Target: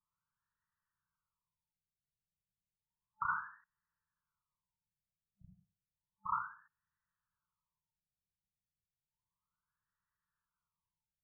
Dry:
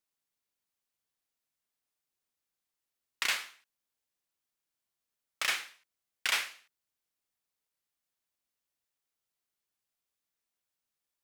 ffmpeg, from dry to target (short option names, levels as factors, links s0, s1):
-af "equalizer=f=1500:w=1.5:g=2.5,afftfilt=real='re*(1-between(b*sr/4096,200,870))':imag='im*(1-between(b*sr/4096,200,870))':win_size=4096:overlap=0.75,bass=f=250:g=3,treble=f=4000:g=-6,afftfilt=real='re*lt(b*sr/1024,670*pow(2000/670,0.5+0.5*sin(2*PI*0.32*pts/sr)))':imag='im*lt(b*sr/1024,670*pow(2000/670,0.5+0.5*sin(2*PI*0.32*pts/sr)))':win_size=1024:overlap=0.75,volume=1.78"